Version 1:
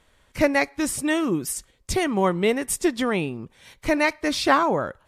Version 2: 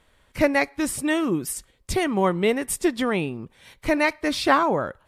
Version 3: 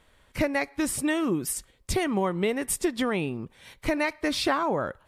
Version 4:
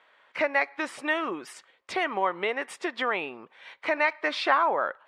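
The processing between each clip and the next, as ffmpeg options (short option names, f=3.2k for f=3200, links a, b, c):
-af "equalizer=f=6.3k:w=1.8:g=-4"
-af "acompressor=threshold=-22dB:ratio=4"
-af "highpass=740,lowpass=2.5k,volume=6dB"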